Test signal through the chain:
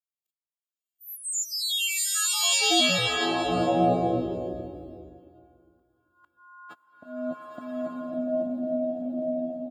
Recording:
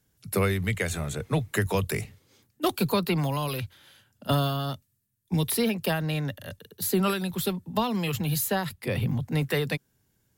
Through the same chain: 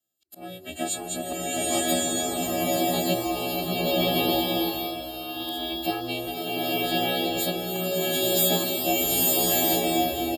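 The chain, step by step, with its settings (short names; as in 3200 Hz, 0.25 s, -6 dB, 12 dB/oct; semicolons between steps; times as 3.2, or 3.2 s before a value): frequency quantiser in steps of 3 st; comb 6 ms, depth 87%; auto swell 0.567 s; small resonant body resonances 460/3100 Hz, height 18 dB, ringing for 25 ms; gate -45 dBFS, range -14 dB; bell 7400 Hz +5.5 dB 0.26 oct; ring modulator 190 Hz; HPF 68 Hz 24 dB/oct; bell 3200 Hz +2.5 dB; bloom reverb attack 1.13 s, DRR -7 dB; gain -9 dB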